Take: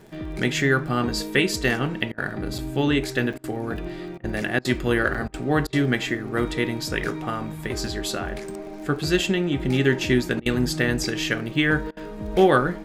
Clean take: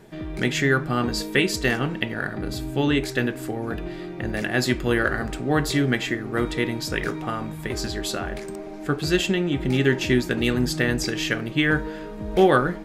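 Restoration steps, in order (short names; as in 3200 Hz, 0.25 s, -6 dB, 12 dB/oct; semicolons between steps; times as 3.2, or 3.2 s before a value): de-click; interpolate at 2.58/3.33/5.14, 6.2 ms; interpolate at 2.12/3.38/4.18/4.59/5.28/5.67/10.4/11.91, 57 ms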